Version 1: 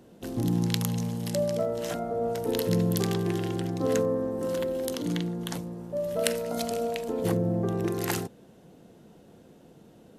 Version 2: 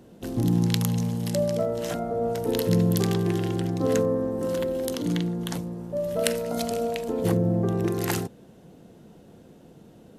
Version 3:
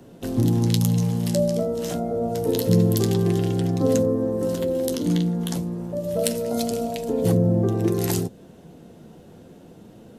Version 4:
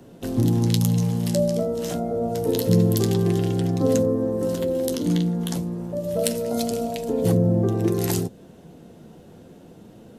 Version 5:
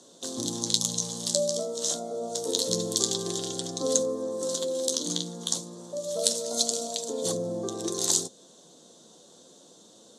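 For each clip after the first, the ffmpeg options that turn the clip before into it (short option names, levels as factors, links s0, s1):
-af "lowshelf=f=220:g=4,volume=1.19"
-filter_complex "[0:a]acrossover=split=170|700|3400[s0][s1][s2][s3];[s2]acompressor=threshold=0.00562:ratio=6[s4];[s0][s1][s4][s3]amix=inputs=4:normalize=0,asoftclip=type=tanh:threshold=0.531,flanger=delay=7.2:depth=5.6:regen=-43:speed=0.28:shape=sinusoidal,volume=2.51"
-af anull
-af "aexciter=amount=7.8:drive=9.3:freq=4000,highpass=270,equalizer=f=560:t=q:w=4:g=5,equalizer=f=1100:t=q:w=4:g=8,equalizer=f=2100:t=q:w=4:g=-4,equalizer=f=3500:t=q:w=4:g=7,equalizer=f=5100:t=q:w=4:g=-6,lowpass=f=7200:w=0.5412,lowpass=f=7200:w=1.3066,volume=0.355"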